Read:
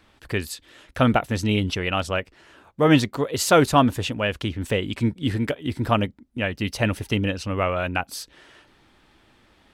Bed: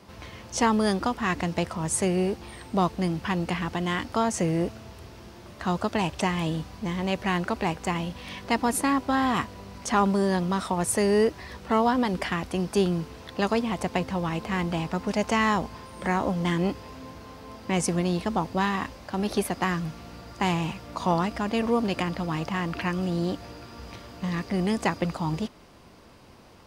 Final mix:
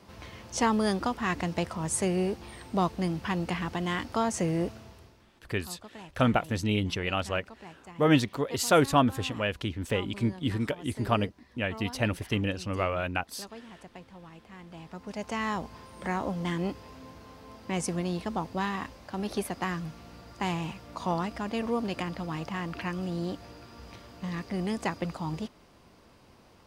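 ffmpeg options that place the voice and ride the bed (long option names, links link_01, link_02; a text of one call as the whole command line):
ffmpeg -i stem1.wav -i stem2.wav -filter_complex "[0:a]adelay=5200,volume=-5.5dB[link_01];[1:a]volume=12dB,afade=type=out:start_time=4.71:duration=0.55:silence=0.133352,afade=type=in:start_time=14.65:duration=1.17:silence=0.177828[link_02];[link_01][link_02]amix=inputs=2:normalize=0" out.wav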